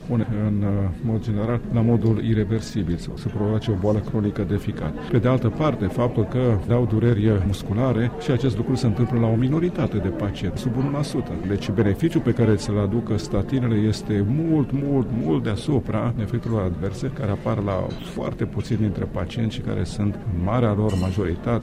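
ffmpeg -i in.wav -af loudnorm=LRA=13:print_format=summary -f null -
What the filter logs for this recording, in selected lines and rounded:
Input Integrated:    -22.9 LUFS
Input True Peak:      -9.8 dBTP
Input LRA:             3.1 LU
Input Threshold:     -32.9 LUFS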